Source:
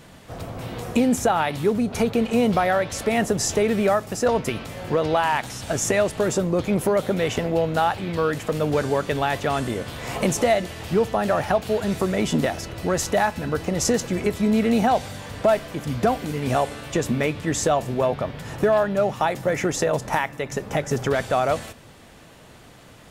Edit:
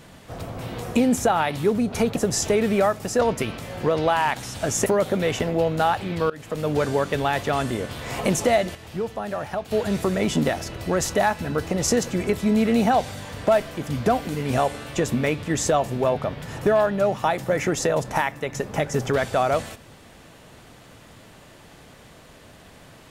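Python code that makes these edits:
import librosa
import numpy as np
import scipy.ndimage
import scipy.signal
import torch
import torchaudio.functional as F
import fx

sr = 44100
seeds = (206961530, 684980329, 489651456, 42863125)

y = fx.edit(x, sr, fx.cut(start_s=2.16, length_s=1.07),
    fx.cut(start_s=5.93, length_s=0.9),
    fx.fade_in_from(start_s=8.27, length_s=0.61, curve='qsin', floor_db=-21.5),
    fx.clip_gain(start_s=10.72, length_s=0.96, db=-7.5), tone=tone)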